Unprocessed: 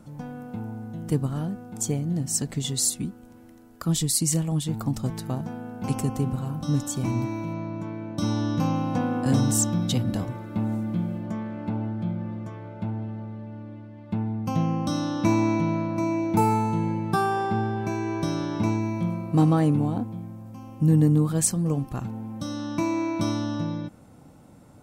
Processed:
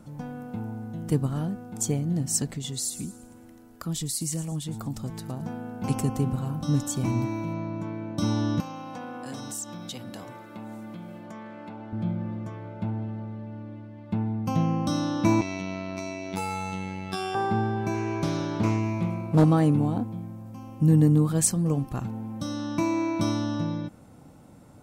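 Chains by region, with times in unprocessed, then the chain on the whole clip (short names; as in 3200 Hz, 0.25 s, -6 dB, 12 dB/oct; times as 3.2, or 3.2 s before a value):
2.49–5.42 compressor 1.5:1, threshold -38 dBFS + thin delay 0.111 s, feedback 42%, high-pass 5600 Hz, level -10.5 dB
8.6–11.93 HPF 660 Hz 6 dB/oct + compressor 2.5:1, threshold -36 dBFS
15.41–17.35 weighting filter D + compressor 2.5:1, threshold -25 dBFS + robotiser 94.6 Hz
17.94–19.44 doubler 26 ms -12 dB + Doppler distortion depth 0.45 ms
whole clip: dry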